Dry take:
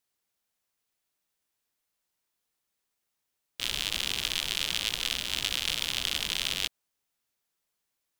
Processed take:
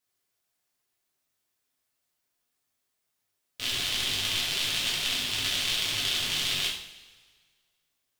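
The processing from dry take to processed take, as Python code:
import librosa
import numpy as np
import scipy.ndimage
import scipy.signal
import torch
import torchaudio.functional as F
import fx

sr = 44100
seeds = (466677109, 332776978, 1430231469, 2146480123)

y = fx.rev_double_slope(x, sr, seeds[0], early_s=0.55, late_s=1.7, knee_db=-16, drr_db=-5.5)
y = F.gain(torch.from_numpy(y), -4.0).numpy()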